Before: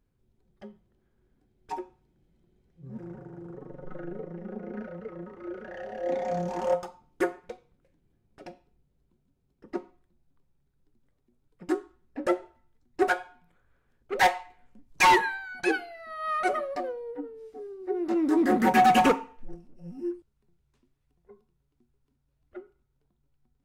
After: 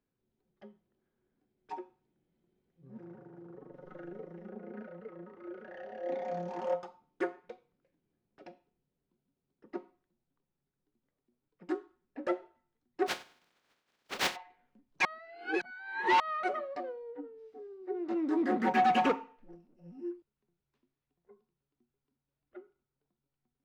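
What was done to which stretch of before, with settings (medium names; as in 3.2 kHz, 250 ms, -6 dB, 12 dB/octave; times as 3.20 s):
3.74–4.50 s: peaking EQ 12 kHz +13.5 dB 2 oct
13.06–14.35 s: spectral contrast reduction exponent 0.2
15.05–16.20 s: reverse
whole clip: three-band isolator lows -15 dB, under 150 Hz, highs -18 dB, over 5.3 kHz; trim -6.5 dB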